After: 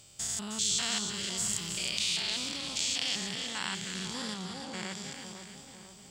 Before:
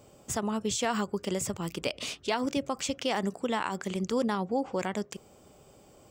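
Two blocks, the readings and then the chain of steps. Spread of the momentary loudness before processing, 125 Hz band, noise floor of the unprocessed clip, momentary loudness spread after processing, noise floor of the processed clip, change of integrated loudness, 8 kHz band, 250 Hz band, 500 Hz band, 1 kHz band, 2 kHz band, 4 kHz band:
5 LU, -5.5 dB, -57 dBFS, 15 LU, -52 dBFS, 0.0 dB, +6.0 dB, -9.5 dB, -15.0 dB, -10.5 dB, 0.0 dB, +7.0 dB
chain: spectrogram pixelated in time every 200 ms; graphic EQ 250/500/1000/2000/4000/8000 Hz -8/-11/-6/+3/+11/+9 dB; two-band feedback delay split 1.3 kHz, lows 499 ms, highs 312 ms, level -7 dB

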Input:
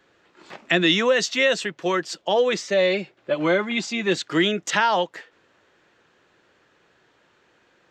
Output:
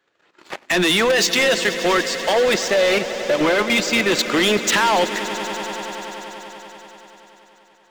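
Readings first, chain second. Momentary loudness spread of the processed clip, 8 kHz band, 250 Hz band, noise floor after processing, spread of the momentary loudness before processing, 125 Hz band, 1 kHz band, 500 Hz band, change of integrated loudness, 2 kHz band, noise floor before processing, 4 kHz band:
16 LU, +9.5 dB, +3.0 dB, -58 dBFS, 7 LU, +1.0 dB, +4.5 dB, +3.5 dB, +4.0 dB, +5.0 dB, -62 dBFS, +5.5 dB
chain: bass shelf 220 Hz -10.5 dB; waveshaping leveller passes 2; level held to a coarse grid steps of 11 dB; overload inside the chain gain 21 dB; on a send: echo with a slow build-up 96 ms, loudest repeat 5, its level -17 dB; on the sum: trim +7 dB

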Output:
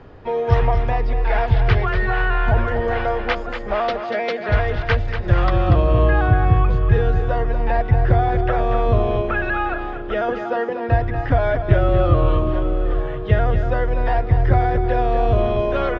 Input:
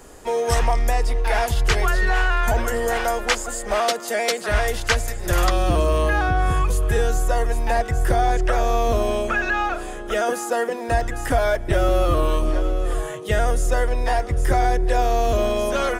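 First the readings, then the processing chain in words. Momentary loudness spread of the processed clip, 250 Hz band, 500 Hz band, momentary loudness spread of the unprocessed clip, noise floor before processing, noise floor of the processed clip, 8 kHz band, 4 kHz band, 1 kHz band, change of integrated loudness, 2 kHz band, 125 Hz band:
7 LU, +3.0 dB, +1.0 dB, 4 LU, -31 dBFS, -27 dBFS, under -25 dB, -6.0 dB, +0.5 dB, +2.0 dB, -1.0 dB, +7.0 dB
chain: Bessel low-pass 2.5 kHz, order 8; peaking EQ 110 Hz +14 dB 0.86 oct; reverse; upward compressor, threshold -33 dBFS; reverse; delay 238 ms -8.5 dB

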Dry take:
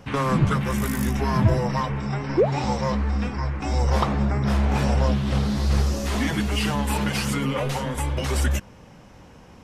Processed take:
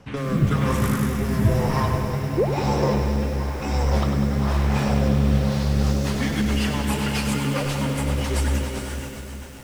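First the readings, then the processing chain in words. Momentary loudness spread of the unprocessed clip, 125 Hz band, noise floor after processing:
5 LU, +1.5 dB, -34 dBFS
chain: echo that smears into a reverb 460 ms, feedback 44%, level -5 dB; rotary cabinet horn 1 Hz, later 7.5 Hz, at 5.36 s; bit-crushed delay 99 ms, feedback 80%, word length 7-bit, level -8 dB

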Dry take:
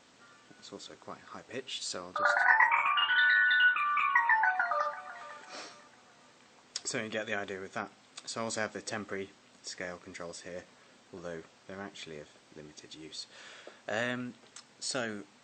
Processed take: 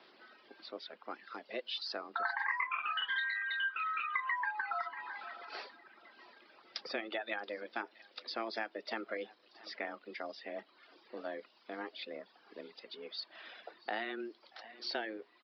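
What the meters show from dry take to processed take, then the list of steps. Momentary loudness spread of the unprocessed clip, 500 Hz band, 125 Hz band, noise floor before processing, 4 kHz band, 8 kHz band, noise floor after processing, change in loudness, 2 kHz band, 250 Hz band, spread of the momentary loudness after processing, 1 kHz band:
23 LU, -3.5 dB, under -15 dB, -61 dBFS, -4.5 dB, under -25 dB, -67 dBFS, -10.0 dB, -9.0 dB, -5.0 dB, 18 LU, -8.0 dB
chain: on a send: thinning echo 632 ms, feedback 52%, level -24 dB; on the sum: frequency shift +110 Hz; delay 677 ms -21.5 dB; resampled via 11.025 kHz; compression 3:1, threshold -35 dBFS, peak gain reduction 12 dB; reverb removal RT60 1 s; trim +1 dB

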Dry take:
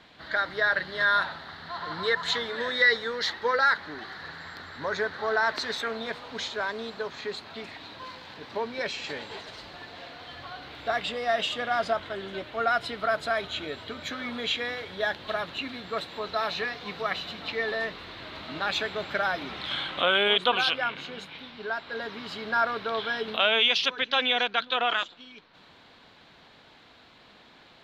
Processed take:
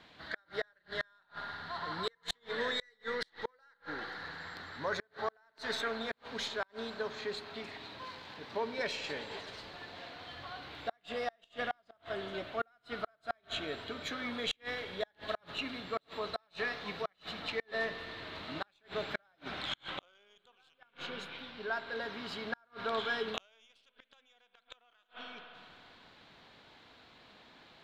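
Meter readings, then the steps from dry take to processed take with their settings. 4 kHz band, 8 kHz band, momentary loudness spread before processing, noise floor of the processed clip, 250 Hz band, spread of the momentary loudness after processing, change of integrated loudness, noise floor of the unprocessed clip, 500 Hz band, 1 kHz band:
-12.5 dB, -7.5 dB, 18 LU, -73 dBFS, -6.0 dB, 16 LU, -12.0 dB, -55 dBFS, -9.0 dB, -12.0 dB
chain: tracing distortion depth 0.033 ms; spring tank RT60 2.3 s, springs 53 ms, chirp 60 ms, DRR 11.5 dB; inverted gate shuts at -18 dBFS, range -38 dB; trim -4.5 dB

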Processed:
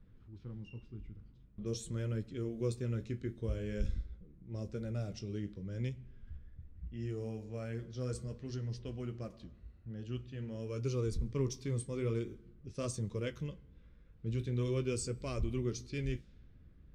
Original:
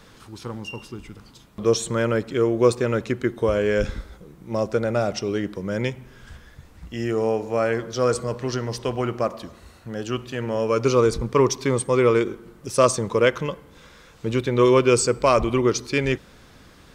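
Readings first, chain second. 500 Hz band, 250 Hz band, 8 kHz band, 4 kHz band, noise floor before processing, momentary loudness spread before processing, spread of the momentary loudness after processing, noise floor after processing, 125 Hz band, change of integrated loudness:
-21.0 dB, -15.5 dB, -17.5 dB, -19.0 dB, -50 dBFS, 15 LU, 15 LU, -60 dBFS, -8.5 dB, -17.0 dB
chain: level-controlled noise filter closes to 1.5 kHz, open at -18.5 dBFS; amplifier tone stack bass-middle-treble 10-0-1; flange 0.46 Hz, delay 9.6 ms, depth 10 ms, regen -48%; trim +7.5 dB

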